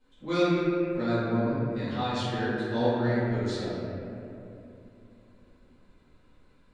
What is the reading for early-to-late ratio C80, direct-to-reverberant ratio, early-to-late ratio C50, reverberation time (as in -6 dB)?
-2.5 dB, -14.5 dB, -4.5 dB, 2.8 s